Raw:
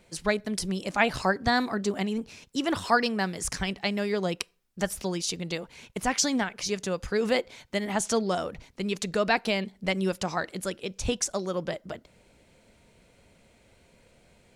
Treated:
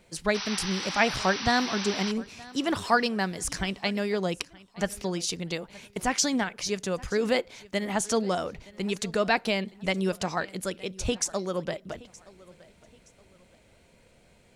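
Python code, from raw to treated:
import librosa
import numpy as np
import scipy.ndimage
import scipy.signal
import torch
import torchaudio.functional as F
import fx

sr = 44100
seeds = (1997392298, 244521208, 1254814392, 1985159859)

p1 = fx.spec_paint(x, sr, seeds[0], shape='noise', start_s=0.34, length_s=1.78, low_hz=740.0, high_hz=6100.0, level_db=-35.0)
p2 = fx.high_shelf(p1, sr, hz=10000.0, db=-7.5, at=(4.35, 5.17))
y = p2 + fx.echo_feedback(p2, sr, ms=921, feedback_pct=35, wet_db=-22.0, dry=0)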